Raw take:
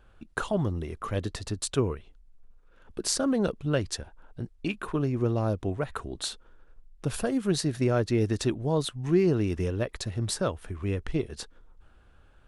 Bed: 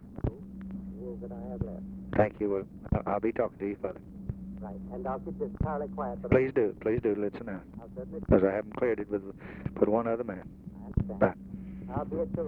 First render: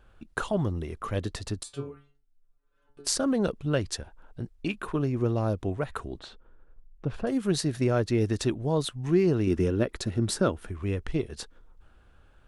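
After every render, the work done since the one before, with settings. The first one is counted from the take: 1.63–3.07 s: inharmonic resonator 140 Hz, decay 0.36 s, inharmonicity 0.002; 6.19–7.27 s: tape spacing loss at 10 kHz 31 dB; 9.47–10.67 s: small resonant body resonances 230/330/1400 Hz, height 7 dB, ringing for 25 ms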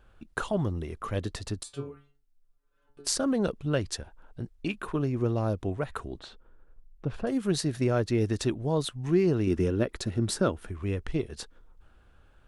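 trim -1 dB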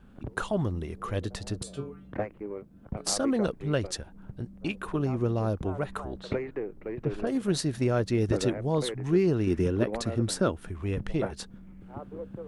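add bed -7.5 dB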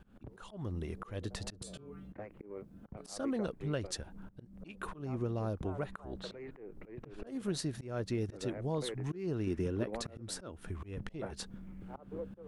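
compression 2:1, threshold -38 dBFS, peak gain reduction 11 dB; slow attack 200 ms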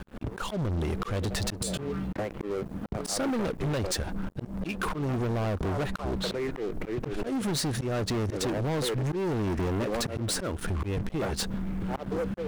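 waveshaping leveller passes 5; compression, threshold -27 dBFS, peak gain reduction 3.5 dB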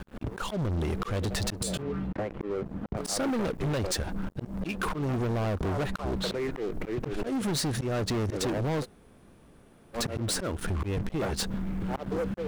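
1.82–2.97 s: low-pass 2.5 kHz 6 dB/octave; 8.83–9.96 s: room tone, crossfade 0.06 s

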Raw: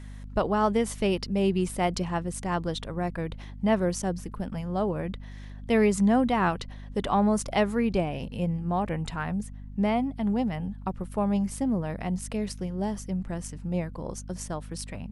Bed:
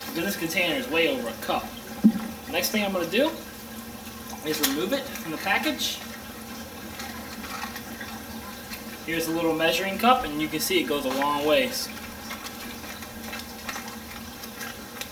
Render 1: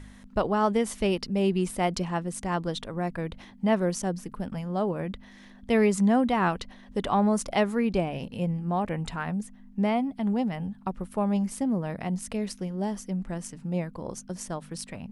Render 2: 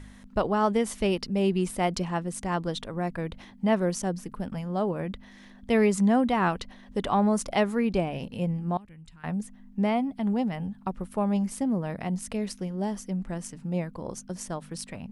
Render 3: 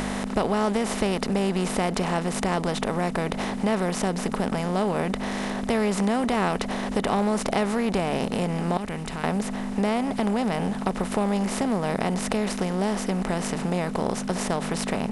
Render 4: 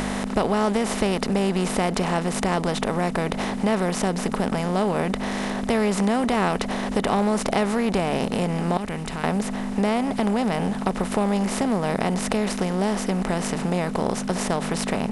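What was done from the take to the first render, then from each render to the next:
de-hum 50 Hz, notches 3
8.77–9.24 s: amplifier tone stack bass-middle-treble 6-0-2
spectral levelling over time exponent 0.4; compression 2:1, threshold -23 dBFS, peak gain reduction 5.5 dB
trim +2 dB

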